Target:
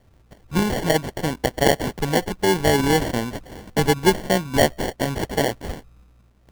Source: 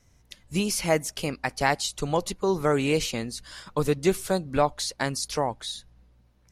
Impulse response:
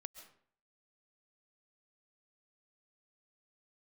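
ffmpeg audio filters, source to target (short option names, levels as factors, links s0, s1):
-af "acrusher=samples=35:mix=1:aa=0.000001,volume=1.88"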